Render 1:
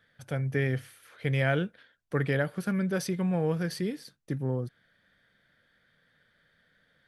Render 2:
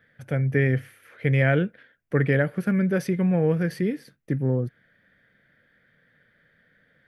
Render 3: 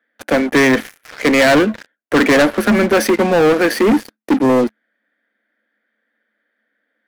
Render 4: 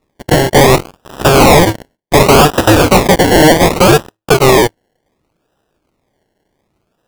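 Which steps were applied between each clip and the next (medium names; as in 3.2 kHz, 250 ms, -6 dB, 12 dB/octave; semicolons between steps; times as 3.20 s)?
graphic EQ 125/250/500/1000/2000/4000/8000 Hz +4/+4/+4/-4/+7/-7/-7 dB; trim +2 dB
rippled Chebyshev high-pass 210 Hz, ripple 6 dB; waveshaping leveller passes 5; trim +7 dB
cycle switcher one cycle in 2, inverted; decimation with a swept rate 28×, swing 60% 0.67 Hz; trim +5.5 dB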